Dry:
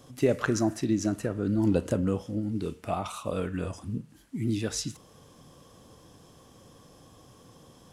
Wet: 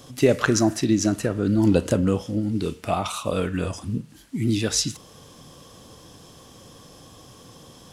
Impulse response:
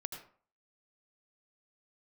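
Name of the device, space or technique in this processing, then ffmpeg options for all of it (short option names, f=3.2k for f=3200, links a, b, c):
presence and air boost: -af "equalizer=f=4.1k:t=o:w=1.8:g=5,highshelf=f=11k:g=4,volume=6dB"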